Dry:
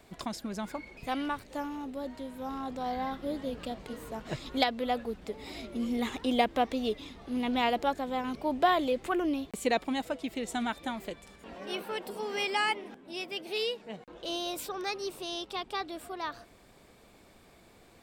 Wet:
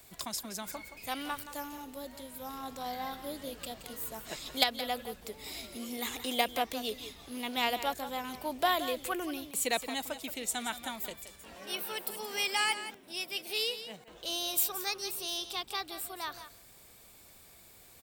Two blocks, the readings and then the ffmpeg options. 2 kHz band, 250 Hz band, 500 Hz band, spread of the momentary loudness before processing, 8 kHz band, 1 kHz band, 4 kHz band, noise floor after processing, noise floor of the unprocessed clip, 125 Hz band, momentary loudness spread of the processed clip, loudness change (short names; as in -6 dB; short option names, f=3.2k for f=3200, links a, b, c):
-0.5 dB, -8.5 dB, -5.5 dB, 12 LU, +9.5 dB, -3.5 dB, +3.0 dB, -57 dBFS, -58 dBFS, -7.5 dB, 15 LU, -1.5 dB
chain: -filter_complex "[0:a]aemphasis=mode=production:type=riaa,acrossover=split=120[a][b];[a]aeval=exprs='0.00335*sin(PI/2*5.01*val(0)/0.00335)':c=same[c];[b]aecho=1:1:174:0.266[d];[c][d]amix=inputs=2:normalize=0,aeval=exprs='0.531*(cos(1*acos(clip(val(0)/0.531,-1,1)))-cos(1*PI/2))+0.0596*(cos(3*acos(clip(val(0)/0.531,-1,1)))-cos(3*PI/2))':c=same"